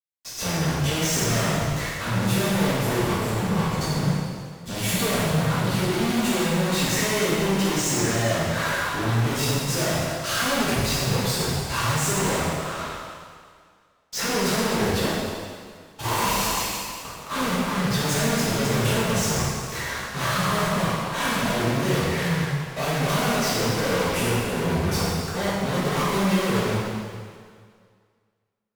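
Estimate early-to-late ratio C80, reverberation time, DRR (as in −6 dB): 0.0 dB, 2.0 s, −10.0 dB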